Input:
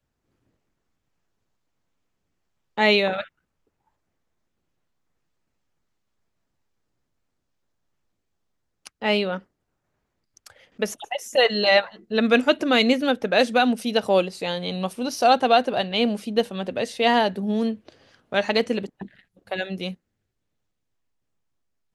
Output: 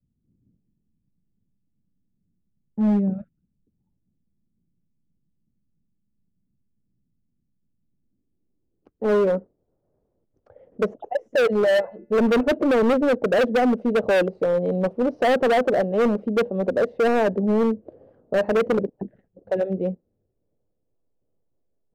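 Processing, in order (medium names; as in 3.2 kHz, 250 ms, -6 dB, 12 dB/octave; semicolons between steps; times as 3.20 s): low-pass sweep 200 Hz -> 520 Hz, 7.73–9.37 s; hard clipper -19 dBFS, distortion -6 dB; 11.77–12.43 s: de-hum 289.6 Hz, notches 10; trim +3 dB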